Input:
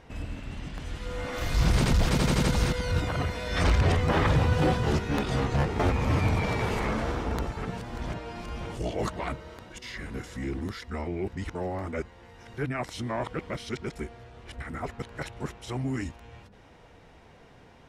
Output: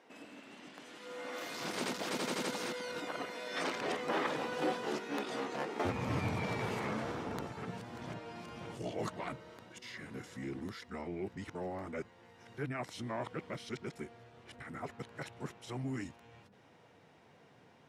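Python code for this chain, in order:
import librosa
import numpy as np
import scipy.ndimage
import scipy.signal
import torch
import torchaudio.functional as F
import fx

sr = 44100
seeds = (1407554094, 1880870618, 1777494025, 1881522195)

y = fx.highpass(x, sr, hz=fx.steps((0.0, 250.0), (5.85, 110.0)), slope=24)
y = F.gain(torch.from_numpy(y), -7.5).numpy()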